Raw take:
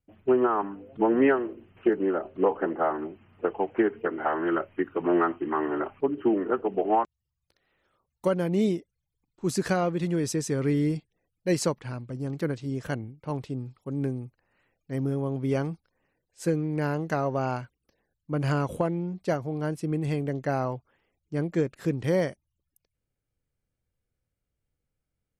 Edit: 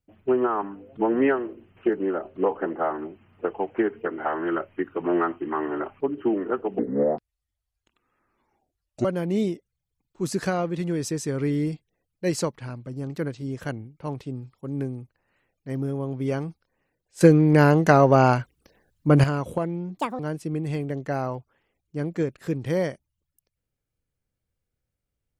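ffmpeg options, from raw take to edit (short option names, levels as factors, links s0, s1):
-filter_complex "[0:a]asplit=7[s0][s1][s2][s3][s4][s5][s6];[s0]atrim=end=6.794[s7];[s1]atrim=start=6.79:end=8.28,asetpts=PTS-STARTPTS,asetrate=29106,aresample=44100,atrim=end_sample=99559,asetpts=PTS-STARTPTS[s8];[s2]atrim=start=8.276:end=16.442[s9];[s3]atrim=start=16.438:end=18.472,asetpts=PTS-STARTPTS,volume=3.76[s10];[s4]atrim=start=18.468:end=19.204[s11];[s5]atrim=start=19.2:end=19.57,asetpts=PTS-STARTPTS,asetrate=72765,aresample=44100,atrim=end_sample=9889,asetpts=PTS-STARTPTS[s12];[s6]atrim=start=19.566[s13];[s7][s8]acrossfade=d=0.004:c1=hsin:c2=hsin[s14];[s14][s9]acrossfade=d=0.004:c1=hsin:c2=hsin[s15];[s15][s10]acrossfade=d=0.004:c1=hsin:c2=hsin[s16];[s16][s11]acrossfade=d=0.004:c1=hsin:c2=hsin[s17];[s17][s12]acrossfade=d=0.004:c1=hsin:c2=hsin[s18];[s18][s13]acrossfade=d=0.004:c1=hsin:c2=hsin"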